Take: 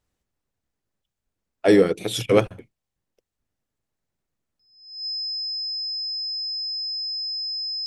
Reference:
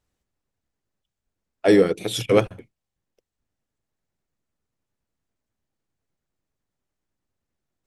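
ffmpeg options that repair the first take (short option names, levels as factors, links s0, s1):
-af "bandreject=f=5100:w=30"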